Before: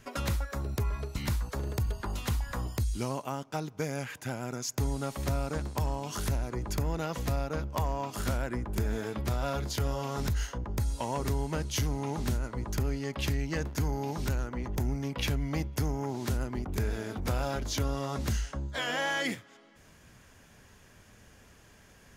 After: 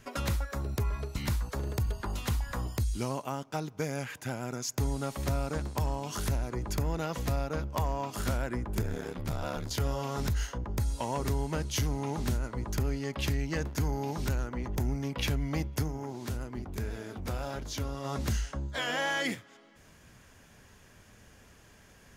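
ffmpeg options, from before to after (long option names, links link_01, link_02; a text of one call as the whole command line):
ffmpeg -i in.wav -filter_complex "[0:a]asettb=1/sr,asplit=3[link_01][link_02][link_03];[link_01]atrim=end=8.814[link_04];[link_02]atrim=start=8.81:end=9.71,asetpts=PTS-STARTPTS,afade=type=in:duration=0.004:curve=qsin,afade=type=out:start_time=0.896:duration=0.004:curve=qsin,aeval=exprs='val(0)*sin(2*PI*37*n/s)':channel_layout=same[link_05];[link_03]atrim=start=9.706[link_06];[link_04][link_05]acrossfade=duration=0.004:curve1=hsin:curve2=qsin[link_07];[link_07][link_06]acrossfade=duration=0.004:curve1=qsin:curve2=hsin,asplit=3[link_08][link_09][link_10];[link_08]afade=type=out:start_time=15.82:duration=0.02[link_11];[link_09]flanger=delay=6.2:depth=7.7:regen=78:speed=1.7:shape=sinusoidal,afade=type=in:start_time=15.82:duration=0.02,afade=type=out:start_time=18.04:duration=0.02[link_12];[link_10]afade=type=in:start_time=18.04:duration=0.02[link_13];[link_11][link_12][link_13]amix=inputs=3:normalize=0" out.wav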